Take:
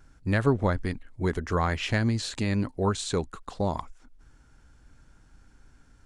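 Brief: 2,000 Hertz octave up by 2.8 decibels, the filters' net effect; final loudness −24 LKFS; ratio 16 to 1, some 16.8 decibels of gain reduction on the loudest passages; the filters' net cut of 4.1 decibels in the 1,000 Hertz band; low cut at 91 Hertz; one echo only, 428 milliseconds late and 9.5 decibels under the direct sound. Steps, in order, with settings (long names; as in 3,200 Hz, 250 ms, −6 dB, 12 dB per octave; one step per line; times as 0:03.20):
high-pass filter 91 Hz
parametric band 1,000 Hz −6.5 dB
parametric band 2,000 Hz +5.5 dB
downward compressor 16 to 1, threshold −35 dBFS
single-tap delay 428 ms −9.5 dB
level +16.5 dB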